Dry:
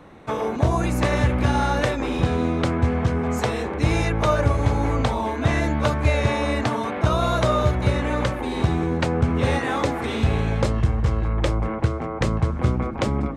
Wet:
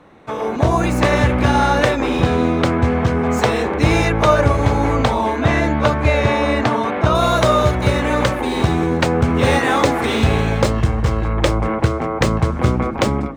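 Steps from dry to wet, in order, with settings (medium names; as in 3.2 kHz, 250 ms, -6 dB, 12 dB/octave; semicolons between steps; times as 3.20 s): median filter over 3 samples; bass shelf 150 Hz -6 dB; level rider; treble shelf 6 kHz -2.5 dB, from 5.41 s -9.5 dB, from 7.15 s +4 dB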